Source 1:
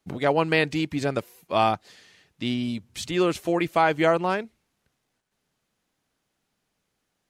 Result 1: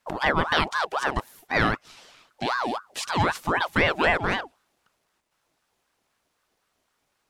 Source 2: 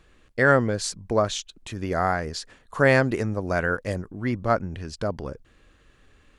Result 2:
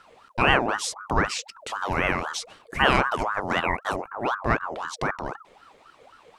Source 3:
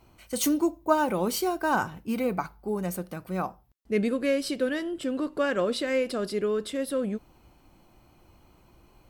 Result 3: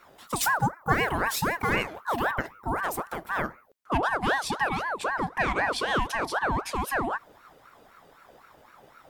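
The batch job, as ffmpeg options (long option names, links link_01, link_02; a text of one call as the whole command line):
ffmpeg -i in.wav -filter_complex "[0:a]asplit=2[link_01][link_02];[link_02]acompressor=threshold=-32dB:ratio=6,volume=0dB[link_03];[link_01][link_03]amix=inputs=2:normalize=0,aeval=exprs='val(0)*sin(2*PI*920*n/s+920*0.5/3.9*sin(2*PI*3.9*n/s))':channel_layout=same" out.wav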